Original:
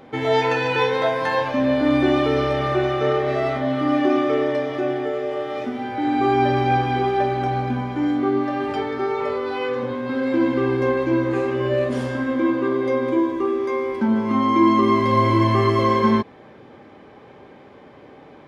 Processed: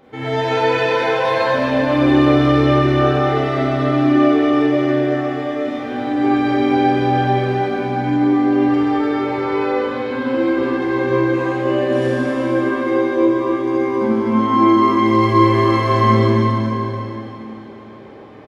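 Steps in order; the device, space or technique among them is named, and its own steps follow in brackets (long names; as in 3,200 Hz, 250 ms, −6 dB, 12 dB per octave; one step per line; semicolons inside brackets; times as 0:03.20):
cave (single-tap delay 264 ms −8.5 dB; convolution reverb RT60 3.5 s, pre-delay 28 ms, DRR −8 dB)
level −5.5 dB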